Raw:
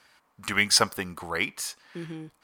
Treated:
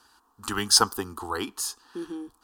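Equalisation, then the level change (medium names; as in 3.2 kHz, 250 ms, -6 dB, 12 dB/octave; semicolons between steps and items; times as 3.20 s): bass shelf 150 Hz +4 dB; static phaser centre 580 Hz, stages 6; +4.0 dB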